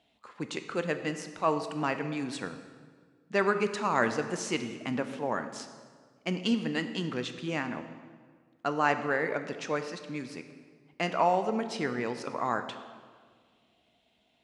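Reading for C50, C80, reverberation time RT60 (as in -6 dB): 10.0 dB, 11.0 dB, 1.7 s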